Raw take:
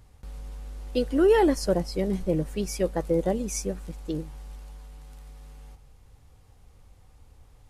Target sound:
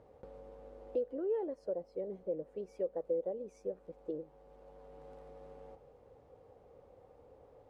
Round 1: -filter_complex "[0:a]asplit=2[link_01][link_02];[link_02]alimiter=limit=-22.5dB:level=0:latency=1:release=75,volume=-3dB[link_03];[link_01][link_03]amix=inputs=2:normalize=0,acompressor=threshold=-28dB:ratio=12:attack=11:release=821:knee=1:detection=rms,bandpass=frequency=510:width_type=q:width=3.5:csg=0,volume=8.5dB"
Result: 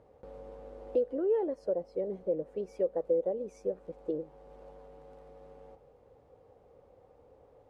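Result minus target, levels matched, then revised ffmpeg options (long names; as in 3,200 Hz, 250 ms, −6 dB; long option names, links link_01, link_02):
downward compressor: peak gain reduction −6 dB
-filter_complex "[0:a]asplit=2[link_01][link_02];[link_02]alimiter=limit=-22.5dB:level=0:latency=1:release=75,volume=-3dB[link_03];[link_01][link_03]amix=inputs=2:normalize=0,acompressor=threshold=-34.5dB:ratio=12:attack=11:release=821:knee=1:detection=rms,bandpass=frequency=510:width_type=q:width=3.5:csg=0,volume=8.5dB"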